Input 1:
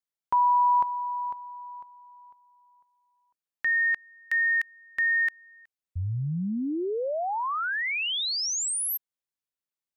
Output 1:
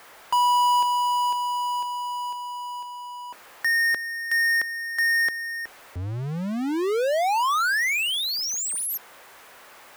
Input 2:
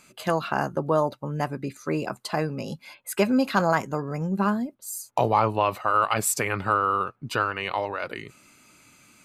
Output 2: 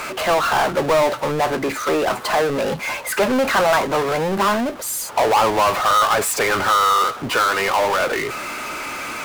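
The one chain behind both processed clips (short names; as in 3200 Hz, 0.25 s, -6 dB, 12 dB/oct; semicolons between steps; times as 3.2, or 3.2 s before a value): HPF 47 Hz 12 dB/oct; three-band isolator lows -22 dB, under 390 Hz, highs -18 dB, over 2200 Hz; power-law curve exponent 0.35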